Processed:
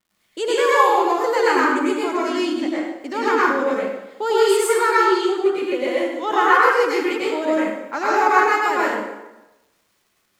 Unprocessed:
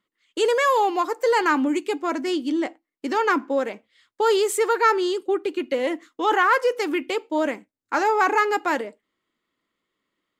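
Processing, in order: vibrato 0.72 Hz 23 cents; crackle 170 per s -49 dBFS; plate-style reverb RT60 1 s, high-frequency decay 0.75×, pre-delay 85 ms, DRR -7.5 dB; trim -4 dB

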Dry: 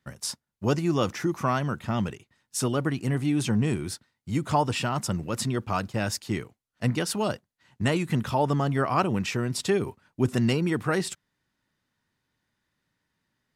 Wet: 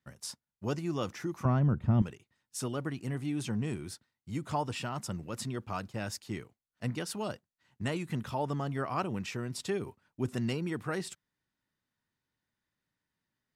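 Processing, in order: 1.45–2.02 s: tilt EQ -4.5 dB/octave; trim -9 dB

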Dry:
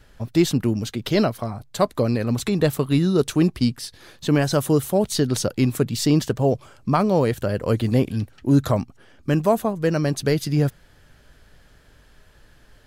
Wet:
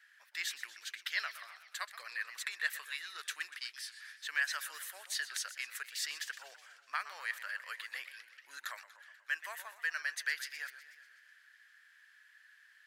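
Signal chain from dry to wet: ladder high-pass 1.6 kHz, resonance 70%; modulated delay 123 ms, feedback 62%, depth 184 cents, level -14 dB

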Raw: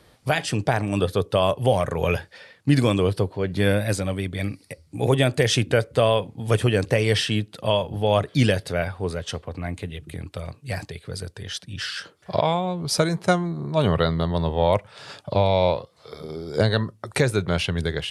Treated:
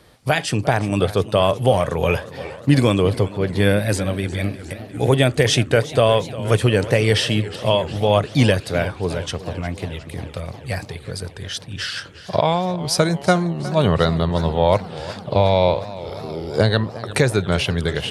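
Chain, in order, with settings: modulated delay 358 ms, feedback 72%, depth 123 cents, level -16.5 dB; trim +3.5 dB

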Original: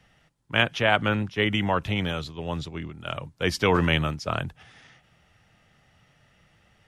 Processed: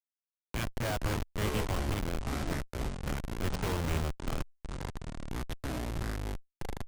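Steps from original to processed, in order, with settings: feedback echo behind a high-pass 290 ms, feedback 82%, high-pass 5 kHz, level -7 dB; Schmitt trigger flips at -22 dBFS; ever faster or slower copies 203 ms, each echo -7 st, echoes 2; trim -3.5 dB

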